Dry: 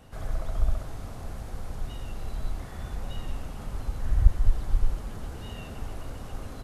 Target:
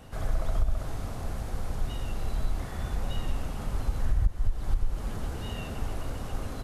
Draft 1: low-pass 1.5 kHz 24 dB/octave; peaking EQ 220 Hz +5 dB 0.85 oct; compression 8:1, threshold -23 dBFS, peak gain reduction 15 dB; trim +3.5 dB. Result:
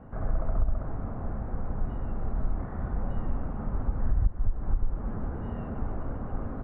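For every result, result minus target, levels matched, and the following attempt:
2 kHz band -6.0 dB; 250 Hz band +3.5 dB
peaking EQ 220 Hz +5 dB 0.85 oct; compression 8:1, threshold -23 dBFS, peak gain reduction 15 dB; trim +3.5 dB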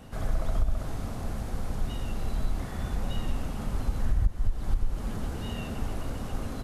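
250 Hz band +3.0 dB
compression 8:1, threshold -23 dBFS, peak gain reduction 15 dB; trim +3.5 dB

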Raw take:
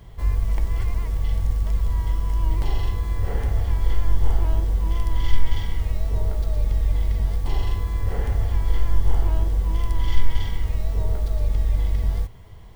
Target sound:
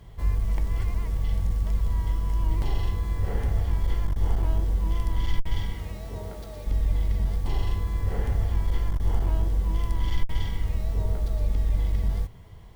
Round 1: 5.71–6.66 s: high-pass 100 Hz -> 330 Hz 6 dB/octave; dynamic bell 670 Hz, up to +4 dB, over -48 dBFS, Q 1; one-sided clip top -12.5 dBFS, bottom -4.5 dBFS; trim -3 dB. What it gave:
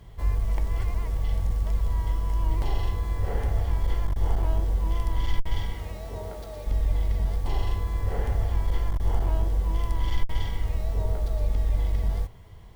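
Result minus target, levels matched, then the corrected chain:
500 Hz band +2.5 dB
5.71–6.66 s: high-pass 100 Hz -> 330 Hz 6 dB/octave; dynamic bell 180 Hz, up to +4 dB, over -48 dBFS, Q 1; one-sided clip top -12.5 dBFS, bottom -4.5 dBFS; trim -3 dB

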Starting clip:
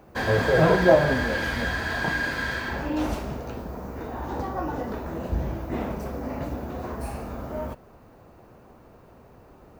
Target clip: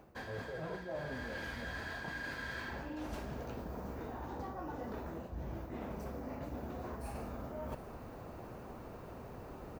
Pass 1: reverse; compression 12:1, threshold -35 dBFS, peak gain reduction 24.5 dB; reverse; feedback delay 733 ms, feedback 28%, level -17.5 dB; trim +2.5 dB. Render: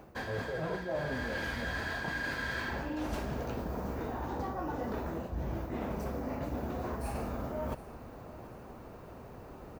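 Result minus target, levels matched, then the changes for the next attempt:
compression: peak gain reduction -6.5 dB
change: compression 12:1, threshold -42 dBFS, peak gain reduction 30.5 dB

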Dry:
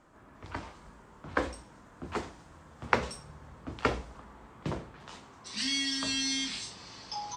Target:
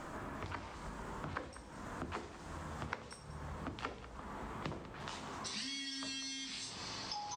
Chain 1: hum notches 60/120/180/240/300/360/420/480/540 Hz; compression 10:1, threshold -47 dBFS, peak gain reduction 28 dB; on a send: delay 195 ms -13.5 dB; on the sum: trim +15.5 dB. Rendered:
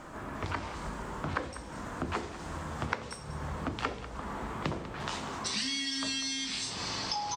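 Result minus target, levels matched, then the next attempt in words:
compression: peak gain reduction -9 dB
hum notches 60/120/180/240/300/360/420/480/540 Hz; compression 10:1, threshold -57 dBFS, peak gain reduction 37 dB; on a send: delay 195 ms -13.5 dB; on the sum: trim +15.5 dB

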